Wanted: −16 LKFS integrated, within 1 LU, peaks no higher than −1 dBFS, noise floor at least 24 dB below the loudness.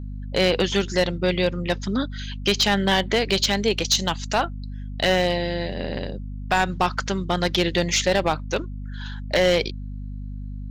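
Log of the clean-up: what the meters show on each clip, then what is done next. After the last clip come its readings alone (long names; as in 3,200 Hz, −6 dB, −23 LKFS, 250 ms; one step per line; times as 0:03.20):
share of clipped samples 0.6%; peaks flattened at −12.0 dBFS; mains hum 50 Hz; hum harmonics up to 250 Hz; level of the hum −30 dBFS; integrated loudness −22.5 LKFS; sample peak −12.0 dBFS; target loudness −16.0 LKFS
→ clipped peaks rebuilt −12 dBFS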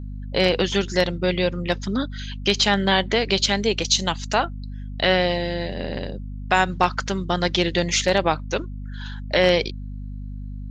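share of clipped samples 0.0%; mains hum 50 Hz; hum harmonics up to 250 Hz; level of the hum −30 dBFS
→ mains-hum notches 50/100/150/200/250 Hz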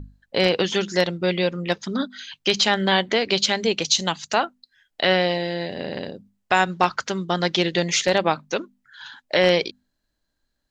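mains hum none found; integrated loudness −22.0 LKFS; sample peak −3.0 dBFS; target loudness −16.0 LKFS
→ level +6 dB
brickwall limiter −1 dBFS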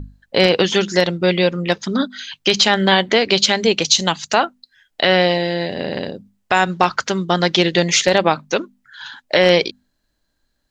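integrated loudness −16.5 LKFS; sample peak −1.0 dBFS; background noise floor −70 dBFS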